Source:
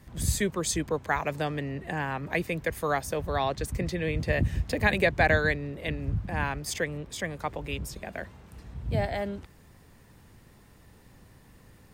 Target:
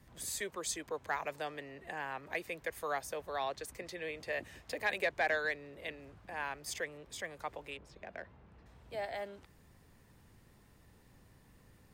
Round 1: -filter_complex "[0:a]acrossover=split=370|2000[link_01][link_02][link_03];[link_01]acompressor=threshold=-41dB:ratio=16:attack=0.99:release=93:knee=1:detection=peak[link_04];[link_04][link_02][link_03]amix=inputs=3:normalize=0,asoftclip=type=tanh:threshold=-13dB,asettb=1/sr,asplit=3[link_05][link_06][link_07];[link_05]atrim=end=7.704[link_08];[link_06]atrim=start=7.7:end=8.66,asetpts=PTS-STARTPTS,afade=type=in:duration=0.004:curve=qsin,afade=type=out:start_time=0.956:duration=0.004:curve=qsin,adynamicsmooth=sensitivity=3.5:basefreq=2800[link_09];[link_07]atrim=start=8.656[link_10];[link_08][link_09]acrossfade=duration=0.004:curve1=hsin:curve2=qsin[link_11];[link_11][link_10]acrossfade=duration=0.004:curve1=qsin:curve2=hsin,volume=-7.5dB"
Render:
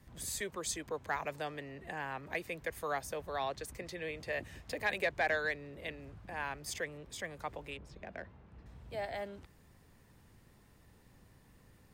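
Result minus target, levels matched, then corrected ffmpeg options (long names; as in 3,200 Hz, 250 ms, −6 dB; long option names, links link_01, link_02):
downward compressor: peak gain reduction −7 dB
-filter_complex "[0:a]acrossover=split=370|2000[link_01][link_02][link_03];[link_01]acompressor=threshold=-48.5dB:ratio=16:attack=0.99:release=93:knee=1:detection=peak[link_04];[link_04][link_02][link_03]amix=inputs=3:normalize=0,asoftclip=type=tanh:threshold=-13dB,asettb=1/sr,asplit=3[link_05][link_06][link_07];[link_05]atrim=end=7.704[link_08];[link_06]atrim=start=7.7:end=8.66,asetpts=PTS-STARTPTS,afade=type=in:duration=0.004:curve=qsin,afade=type=out:start_time=0.956:duration=0.004:curve=qsin,adynamicsmooth=sensitivity=3.5:basefreq=2800[link_09];[link_07]atrim=start=8.656[link_10];[link_08][link_09]acrossfade=duration=0.004:curve1=hsin:curve2=qsin[link_11];[link_11][link_10]acrossfade=duration=0.004:curve1=qsin:curve2=hsin,volume=-7.5dB"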